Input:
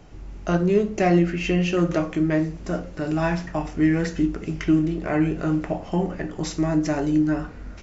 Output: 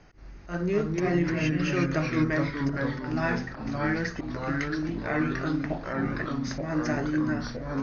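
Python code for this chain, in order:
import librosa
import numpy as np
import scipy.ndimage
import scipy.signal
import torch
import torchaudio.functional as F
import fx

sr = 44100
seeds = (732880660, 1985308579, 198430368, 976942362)

y = fx.auto_swell(x, sr, attack_ms=142.0)
y = scipy.signal.sosfilt(scipy.signal.cheby1(6, 9, 6600.0, 'lowpass', fs=sr, output='sos'), y)
y = fx.echo_pitch(y, sr, ms=180, semitones=-2, count=3, db_per_echo=-3.0)
y = F.gain(torch.from_numpy(y), 1.5).numpy()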